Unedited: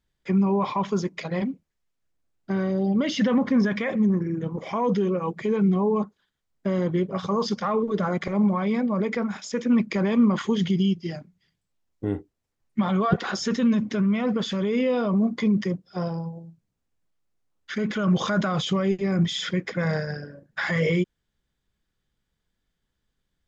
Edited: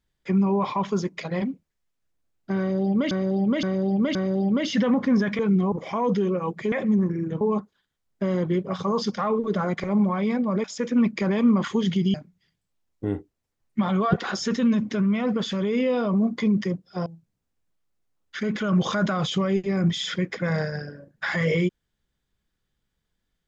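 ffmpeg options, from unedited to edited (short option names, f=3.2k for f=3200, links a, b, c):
-filter_complex "[0:a]asplit=11[a][b][c][d][e][f][g][h][i][j][k];[a]atrim=end=3.112[l];[b]atrim=start=2.588:end=3.112[m];[c]atrim=start=2.588:end=3.112[n];[d]atrim=start=2.588:end=3.832[o];[e]atrim=start=5.518:end=5.852[p];[f]atrim=start=4.518:end=5.522[q];[g]atrim=start=3.828:end=4.522[r];[h]atrim=start=5.848:end=9.082[s];[i]atrim=start=9.378:end=10.882[t];[j]atrim=start=11.138:end=16.062[u];[k]atrim=start=16.408[v];[l][m]acrossfade=d=0.004:c1=hsin:c2=hsin[w];[w][n]acrossfade=d=0.004:c1=hsin:c2=hsin[x];[x][o]acrossfade=d=0.004:c1=hsin:c2=hsin[y];[y][p]acrossfade=d=0.004:c1=hsin:c2=hsin[z];[z][q]acrossfade=d=0.004:c1=hsin:c2=hsin[aa];[aa][r]acrossfade=d=0.004:c1=hsin:c2=hsin[ab];[ab][s]acrossfade=d=0.004:c1=hsin:c2=hsin[ac];[ac][t]acrossfade=d=0.004:c1=hsin:c2=hsin[ad];[ad][u]acrossfade=d=0.004:c1=hsin:c2=hsin[ae];[ae][v]acrossfade=d=0.004:c1=hsin:c2=hsin"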